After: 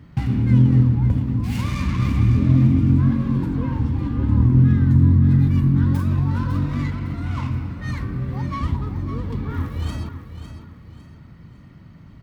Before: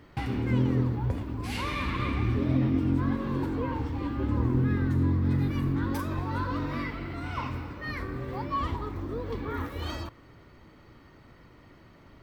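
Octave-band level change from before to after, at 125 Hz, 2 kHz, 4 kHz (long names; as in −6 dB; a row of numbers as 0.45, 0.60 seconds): +12.5 dB, 0.0 dB, can't be measured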